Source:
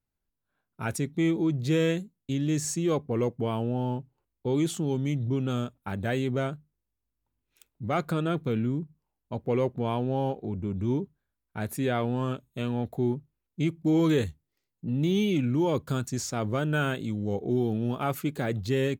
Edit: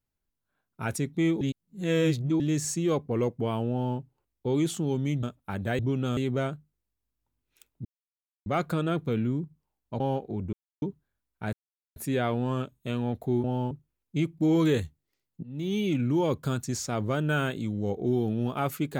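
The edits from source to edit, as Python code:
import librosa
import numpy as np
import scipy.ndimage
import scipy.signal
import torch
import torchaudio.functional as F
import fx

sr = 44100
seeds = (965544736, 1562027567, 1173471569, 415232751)

y = fx.edit(x, sr, fx.reverse_span(start_s=1.41, length_s=0.99),
    fx.duplicate(start_s=3.71, length_s=0.27, to_s=13.15),
    fx.move(start_s=5.23, length_s=0.38, to_s=6.17),
    fx.insert_silence(at_s=7.85, length_s=0.61),
    fx.cut(start_s=9.39, length_s=0.75),
    fx.silence(start_s=10.67, length_s=0.29),
    fx.insert_silence(at_s=11.67, length_s=0.43),
    fx.fade_in_from(start_s=14.87, length_s=0.71, curve='qsin', floor_db=-23.0), tone=tone)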